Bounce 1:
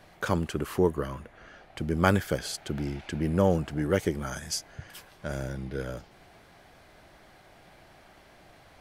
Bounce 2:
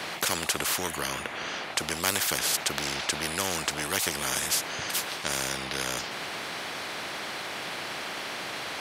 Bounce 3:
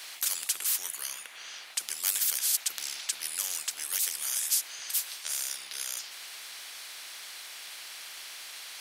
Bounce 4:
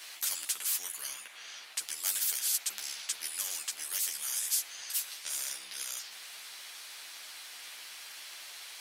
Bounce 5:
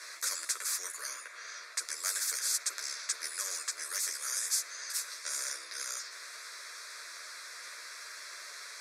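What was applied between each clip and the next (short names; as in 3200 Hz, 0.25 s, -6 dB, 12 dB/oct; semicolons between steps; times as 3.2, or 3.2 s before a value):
weighting filter A; spectral compressor 4:1
differentiator
chorus voices 6, 0.76 Hz, delay 12 ms, depth 3.6 ms
BPF 370–6500 Hz; fixed phaser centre 810 Hz, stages 6; gain +7.5 dB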